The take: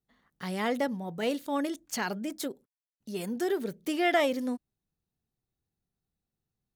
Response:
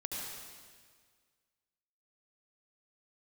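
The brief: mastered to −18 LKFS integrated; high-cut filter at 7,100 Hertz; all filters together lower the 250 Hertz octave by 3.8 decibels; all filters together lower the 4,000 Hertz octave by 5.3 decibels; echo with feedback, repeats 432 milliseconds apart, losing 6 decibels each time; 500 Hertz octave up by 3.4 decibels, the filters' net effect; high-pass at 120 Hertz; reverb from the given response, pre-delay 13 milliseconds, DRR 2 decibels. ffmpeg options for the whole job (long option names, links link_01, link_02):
-filter_complex "[0:a]highpass=120,lowpass=7100,equalizer=frequency=250:width_type=o:gain=-7.5,equalizer=frequency=500:width_type=o:gain=6.5,equalizer=frequency=4000:width_type=o:gain=-7.5,aecho=1:1:432|864|1296|1728|2160|2592:0.501|0.251|0.125|0.0626|0.0313|0.0157,asplit=2[link_01][link_02];[1:a]atrim=start_sample=2205,adelay=13[link_03];[link_02][link_03]afir=irnorm=-1:irlink=0,volume=-3.5dB[link_04];[link_01][link_04]amix=inputs=2:normalize=0,volume=9.5dB"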